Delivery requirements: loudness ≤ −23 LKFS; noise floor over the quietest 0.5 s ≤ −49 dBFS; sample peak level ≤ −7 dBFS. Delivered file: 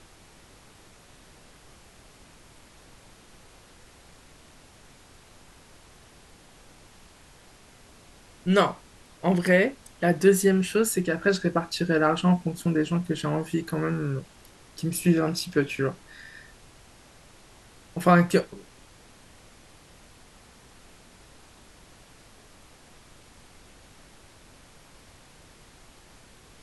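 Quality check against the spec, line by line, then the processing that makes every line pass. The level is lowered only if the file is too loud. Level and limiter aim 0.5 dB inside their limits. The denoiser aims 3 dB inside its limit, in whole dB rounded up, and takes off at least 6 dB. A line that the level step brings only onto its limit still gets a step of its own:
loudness −24.5 LKFS: in spec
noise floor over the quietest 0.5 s −53 dBFS: in spec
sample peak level −6.0 dBFS: out of spec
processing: brickwall limiter −7.5 dBFS

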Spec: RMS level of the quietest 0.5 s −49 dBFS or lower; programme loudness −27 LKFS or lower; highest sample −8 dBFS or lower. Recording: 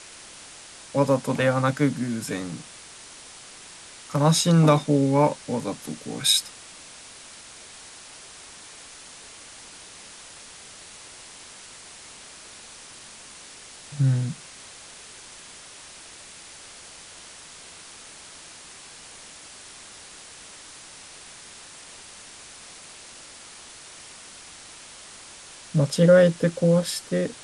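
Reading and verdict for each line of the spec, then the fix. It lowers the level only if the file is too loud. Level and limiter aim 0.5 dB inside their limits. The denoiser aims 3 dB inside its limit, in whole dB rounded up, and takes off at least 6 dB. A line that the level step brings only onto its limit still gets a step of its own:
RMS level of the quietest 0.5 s −45 dBFS: out of spec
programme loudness −22.0 LKFS: out of spec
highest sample −6.0 dBFS: out of spec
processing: level −5.5 dB

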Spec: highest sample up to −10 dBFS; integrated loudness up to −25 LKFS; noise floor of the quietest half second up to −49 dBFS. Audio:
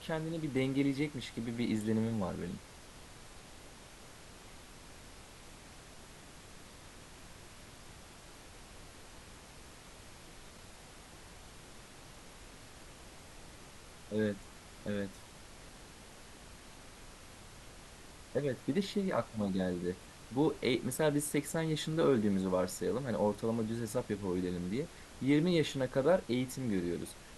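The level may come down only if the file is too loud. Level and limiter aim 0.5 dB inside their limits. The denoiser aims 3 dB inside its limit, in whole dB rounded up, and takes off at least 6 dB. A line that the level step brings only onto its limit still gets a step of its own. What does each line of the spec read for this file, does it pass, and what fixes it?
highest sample −17.0 dBFS: in spec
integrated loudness −34.5 LKFS: in spec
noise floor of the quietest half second −53 dBFS: in spec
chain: no processing needed

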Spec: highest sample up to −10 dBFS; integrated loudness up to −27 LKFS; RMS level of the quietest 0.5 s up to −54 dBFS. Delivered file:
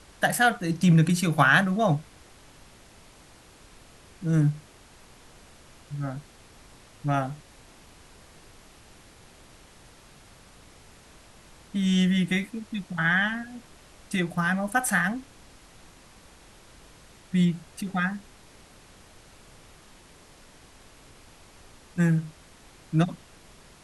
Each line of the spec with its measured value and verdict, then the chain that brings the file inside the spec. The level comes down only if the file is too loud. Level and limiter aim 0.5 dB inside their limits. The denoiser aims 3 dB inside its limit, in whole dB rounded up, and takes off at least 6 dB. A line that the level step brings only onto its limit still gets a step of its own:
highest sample −6.5 dBFS: out of spec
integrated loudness −25.5 LKFS: out of spec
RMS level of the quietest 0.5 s −52 dBFS: out of spec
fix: broadband denoise 6 dB, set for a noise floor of −52 dBFS
level −2 dB
brickwall limiter −10.5 dBFS

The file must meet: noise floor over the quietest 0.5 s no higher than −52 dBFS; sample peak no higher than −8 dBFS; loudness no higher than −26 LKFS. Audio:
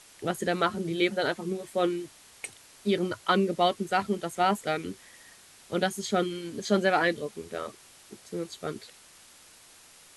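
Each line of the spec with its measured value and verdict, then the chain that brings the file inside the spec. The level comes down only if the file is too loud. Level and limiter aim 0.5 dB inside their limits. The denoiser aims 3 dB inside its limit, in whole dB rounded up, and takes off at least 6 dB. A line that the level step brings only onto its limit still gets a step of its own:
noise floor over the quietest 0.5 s −54 dBFS: in spec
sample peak −11.0 dBFS: in spec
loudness −29.0 LKFS: in spec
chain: no processing needed

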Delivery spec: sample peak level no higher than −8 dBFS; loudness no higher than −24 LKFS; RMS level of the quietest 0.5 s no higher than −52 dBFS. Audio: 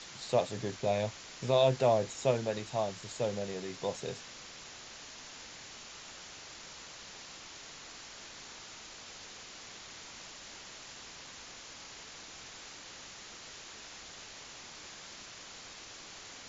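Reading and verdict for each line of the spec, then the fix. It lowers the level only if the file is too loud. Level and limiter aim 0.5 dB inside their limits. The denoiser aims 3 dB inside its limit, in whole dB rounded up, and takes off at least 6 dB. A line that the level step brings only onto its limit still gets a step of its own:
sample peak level −14.5 dBFS: in spec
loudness −38.0 LKFS: in spec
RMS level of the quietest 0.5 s −49 dBFS: out of spec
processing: broadband denoise 6 dB, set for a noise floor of −49 dBFS

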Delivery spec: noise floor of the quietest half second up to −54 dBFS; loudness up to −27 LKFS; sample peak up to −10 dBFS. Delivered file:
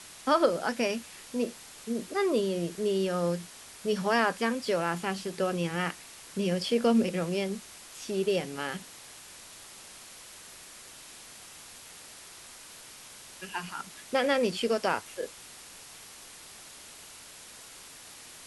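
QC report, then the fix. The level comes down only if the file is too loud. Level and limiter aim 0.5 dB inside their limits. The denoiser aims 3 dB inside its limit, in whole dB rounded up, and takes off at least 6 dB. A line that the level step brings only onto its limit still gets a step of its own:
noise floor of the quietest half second −49 dBFS: out of spec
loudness −30.0 LKFS: in spec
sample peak −12.0 dBFS: in spec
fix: broadband denoise 8 dB, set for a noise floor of −49 dBFS

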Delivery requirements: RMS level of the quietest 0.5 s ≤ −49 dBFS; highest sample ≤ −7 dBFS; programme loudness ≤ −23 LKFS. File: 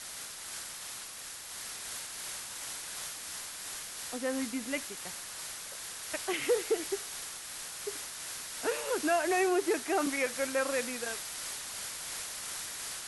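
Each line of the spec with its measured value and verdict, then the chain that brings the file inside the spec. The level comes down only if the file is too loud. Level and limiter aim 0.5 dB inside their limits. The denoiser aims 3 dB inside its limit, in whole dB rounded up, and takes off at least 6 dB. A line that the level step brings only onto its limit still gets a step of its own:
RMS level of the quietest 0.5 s −44 dBFS: out of spec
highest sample −18.0 dBFS: in spec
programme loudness −34.5 LKFS: in spec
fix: broadband denoise 8 dB, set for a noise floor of −44 dBFS

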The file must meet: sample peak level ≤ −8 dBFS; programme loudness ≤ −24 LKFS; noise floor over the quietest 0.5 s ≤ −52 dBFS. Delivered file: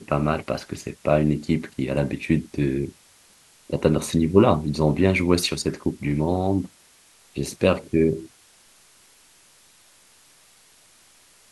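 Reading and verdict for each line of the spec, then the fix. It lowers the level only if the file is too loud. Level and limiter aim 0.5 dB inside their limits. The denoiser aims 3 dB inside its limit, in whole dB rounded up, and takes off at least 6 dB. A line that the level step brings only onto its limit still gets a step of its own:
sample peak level −3.0 dBFS: out of spec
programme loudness −23.0 LKFS: out of spec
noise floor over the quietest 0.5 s −55 dBFS: in spec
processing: level −1.5 dB
brickwall limiter −8.5 dBFS

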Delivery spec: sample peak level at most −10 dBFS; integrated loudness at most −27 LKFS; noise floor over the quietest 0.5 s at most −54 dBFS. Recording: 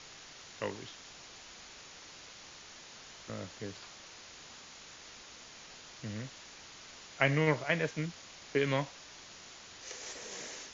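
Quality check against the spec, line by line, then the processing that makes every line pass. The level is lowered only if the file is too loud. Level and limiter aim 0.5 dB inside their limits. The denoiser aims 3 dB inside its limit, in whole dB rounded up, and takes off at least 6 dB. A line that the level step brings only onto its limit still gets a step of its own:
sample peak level −12.5 dBFS: in spec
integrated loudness −35.5 LKFS: in spec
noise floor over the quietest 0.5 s −52 dBFS: out of spec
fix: broadband denoise 6 dB, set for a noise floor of −52 dBFS

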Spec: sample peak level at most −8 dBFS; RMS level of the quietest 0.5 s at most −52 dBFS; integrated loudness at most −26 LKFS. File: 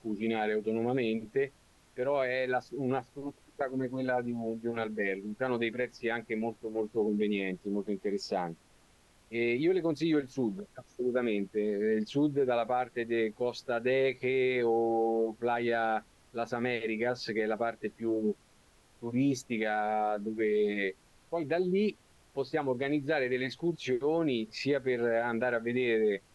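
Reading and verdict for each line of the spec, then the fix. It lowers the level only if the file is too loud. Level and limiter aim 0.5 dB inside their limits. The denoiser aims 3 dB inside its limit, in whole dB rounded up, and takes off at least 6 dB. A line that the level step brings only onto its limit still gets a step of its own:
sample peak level −17.5 dBFS: in spec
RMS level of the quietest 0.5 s −63 dBFS: in spec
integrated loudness −31.5 LKFS: in spec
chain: no processing needed

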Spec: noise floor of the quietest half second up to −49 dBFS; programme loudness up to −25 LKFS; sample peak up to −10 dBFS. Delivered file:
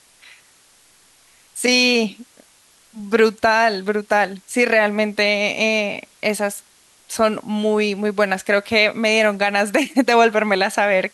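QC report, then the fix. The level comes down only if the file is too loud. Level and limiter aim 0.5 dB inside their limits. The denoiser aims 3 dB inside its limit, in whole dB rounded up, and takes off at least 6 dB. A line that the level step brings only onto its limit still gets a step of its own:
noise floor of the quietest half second −54 dBFS: in spec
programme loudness −18.0 LKFS: out of spec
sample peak −4.5 dBFS: out of spec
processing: level −7.5 dB

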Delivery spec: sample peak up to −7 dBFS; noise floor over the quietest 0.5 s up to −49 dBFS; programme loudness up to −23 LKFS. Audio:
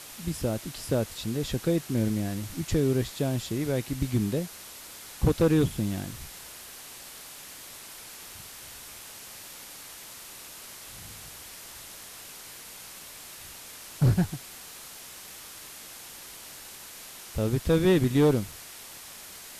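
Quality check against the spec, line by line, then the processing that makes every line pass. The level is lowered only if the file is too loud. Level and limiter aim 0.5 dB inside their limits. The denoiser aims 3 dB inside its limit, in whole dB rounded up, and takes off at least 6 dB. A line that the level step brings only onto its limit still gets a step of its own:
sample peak −12.5 dBFS: in spec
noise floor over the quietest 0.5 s −45 dBFS: out of spec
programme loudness −27.5 LKFS: in spec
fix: broadband denoise 7 dB, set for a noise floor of −45 dBFS

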